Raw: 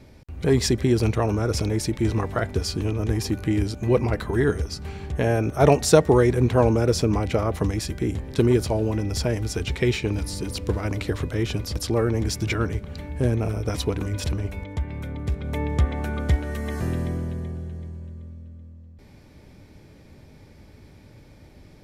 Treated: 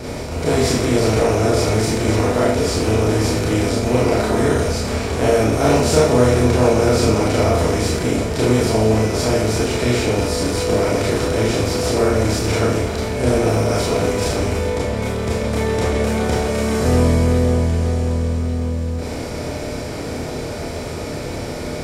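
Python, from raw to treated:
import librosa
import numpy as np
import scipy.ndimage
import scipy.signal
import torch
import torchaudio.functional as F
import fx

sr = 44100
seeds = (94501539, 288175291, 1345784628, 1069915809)

y = fx.bin_compress(x, sr, power=0.4)
y = fx.vibrato(y, sr, rate_hz=1.8, depth_cents=10.0)
y = fx.rev_schroeder(y, sr, rt60_s=0.55, comb_ms=25, drr_db=-6.0)
y = y * 10.0 ** (-8.0 / 20.0)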